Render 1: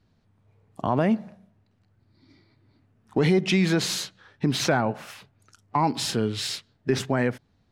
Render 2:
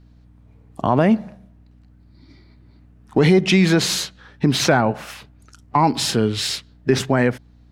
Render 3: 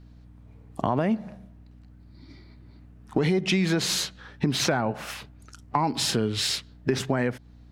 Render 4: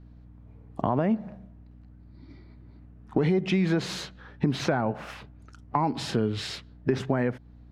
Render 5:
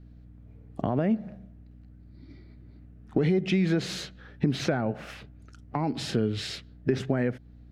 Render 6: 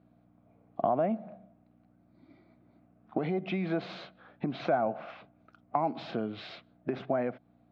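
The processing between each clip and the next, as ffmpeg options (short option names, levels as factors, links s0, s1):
-af "aeval=exprs='val(0)+0.00178*(sin(2*PI*60*n/s)+sin(2*PI*2*60*n/s)/2+sin(2*PI*3*60*n/s)/3+sin(2*PI*4*60*n/s)/4+sin(2*PI*5*60*n/s)/5)':c=same,volume=2.11"
-af "acompressor=threshold=0.0708:ratio=3"
-af "lowpass=f=1500:p=1"
-af "equalizer=f=980:t=o:w=0.62:g=-10"
-af "highpass=260,equalizer=f=270:t=q:w=4:g=-3,equalizer=f=420:t=q:w=4:g=-8,equalizer=f=690:t=q:w=4:g=10,equalizer=f=1100:t=q:w=4:g=5,equalizer=f=1800:t=q:w=4:g=-9,equalizer=f=2900:t=q:w=4:g=-6,lowpass=f=3200:w=0.5412,lowpass=f=3200:w=1.3066,volume=0.841"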